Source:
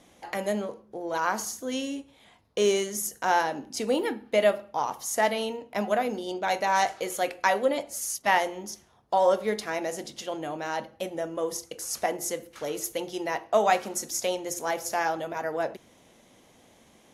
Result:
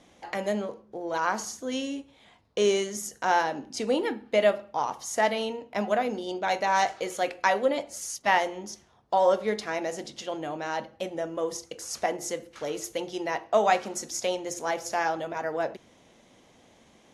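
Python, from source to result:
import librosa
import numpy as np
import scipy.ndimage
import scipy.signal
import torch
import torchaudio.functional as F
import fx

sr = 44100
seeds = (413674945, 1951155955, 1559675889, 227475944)

y = scipy.signal.sosfilt(scipy.signal.butter(2, 7500.0, 'lowpass', fs=sr, output='sos'), x)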